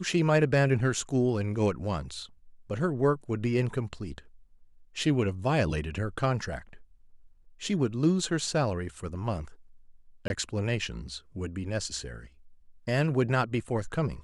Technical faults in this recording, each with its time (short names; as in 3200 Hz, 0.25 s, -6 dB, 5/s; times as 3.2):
10.28–10.3 gap 21 ms